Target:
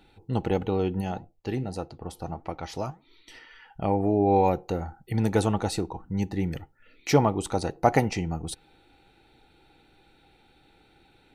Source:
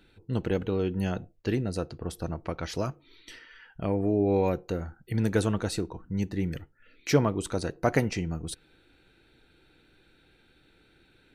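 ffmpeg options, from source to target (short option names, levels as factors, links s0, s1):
-filter_complex "[0:a]asplit=3[s0][s1][s2];[s0]afade=t=out:st=1:d=0.02[s3];[s1]flanger=delay=2.9:depth=5:regen=86:speed=1.6:shape=sinusoidal,afade=t=in:st=1:d=0.02,afade=t=out:st=3.34:d=0.02[s4];[s2]afade=t=in:st=3.34:d=0.02[s5];[s3][s4][s5]amix=inputs=3:normalize=0,equalizer=f=810:t=o:w=0.28:g=14.5,bandreject=f=1600:w=8.5,volume=1.19"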